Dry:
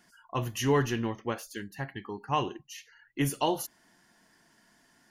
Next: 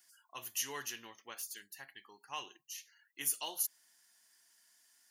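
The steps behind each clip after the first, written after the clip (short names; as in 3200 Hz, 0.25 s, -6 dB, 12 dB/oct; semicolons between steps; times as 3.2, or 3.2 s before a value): differentiator; gain +2 dB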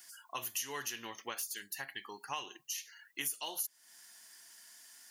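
compressor 4:1, threshold -49 dBFS, peak gain reduction 17 dB; gain +11.5 dB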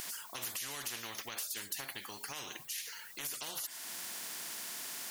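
limiter -30.5 dBFS, peak gain reduction 8.5 dB; spectral compressor 4:1; gain +6 dB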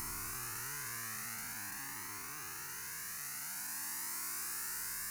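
time blur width 1.04 s; fixed phaser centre 1400 Hz, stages 4; cascading flanger rising 0.49 Hz; gain +10.5 dB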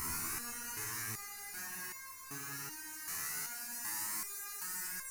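analogue delay 0.175 s, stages 1024, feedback 74%, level -7 dB; stepped resonator 2.6 Hz 82–530 Hz; gain +12 dB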